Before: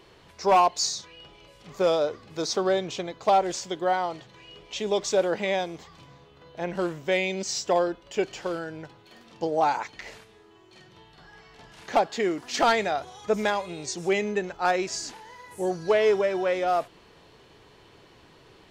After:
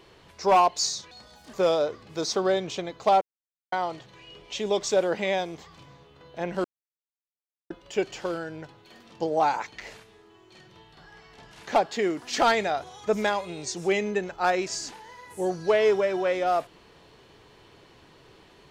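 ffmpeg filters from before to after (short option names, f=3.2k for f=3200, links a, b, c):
-filter_complex "[0:a]asplit=7[a][b][c][d][e][f][g];[a]atrim=end=1.114[h];[b]atrim=start=1.11:end=1.74,asetpts=PTS-STARTPTS,asetrate=65709,aresample=44100,atrim=end_sample=18646,asetpts=PTS-STARTPTS[i];[c]atrim=start=1.736:end=3.42,asetpts=PTS-STARTPTS,afade=t=out:st=1.68:d=0.004:c=hsin[j];[d]atrim=start=3.42:end=3.93,asetpts=PTS-STARTPTS,volume=0[k];[e]atrim=start=3.93:end=6.85,asetpts=PTS-STARTPTS,afade=t=in:d=0.004:c=hsin,afade=t=out:st=2.916:d=0.004:c=hsin[l];[f]atrim=start=6.85:end=7.91,asetpts=PTS-STARTPTS,volume=0[m];[g]atrim=start=7.91,asetpts=PTS-STARTPTS,afade=t=in:d=0.004:c=hsin[n];[h][i]acrossfade=d=0.004:c1=hsin:c2=hsin[o];[j][k][l][m][n]concat=n=5:v=0:a=1[p];[o][p]acrossfade=d=0.004:c1=hsin:c2=hsin"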